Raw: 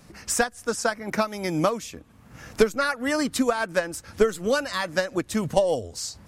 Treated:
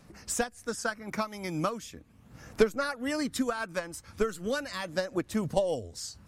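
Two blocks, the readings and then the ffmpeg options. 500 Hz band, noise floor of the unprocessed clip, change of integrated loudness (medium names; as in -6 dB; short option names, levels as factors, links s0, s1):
-7.0 dB, -52 dBFS, -6.5 dB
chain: -af "aphaser=in_gain=1:out_gain=1:delay=1:decay=0.33:speed=0.38:type=triangular,volume=0.422"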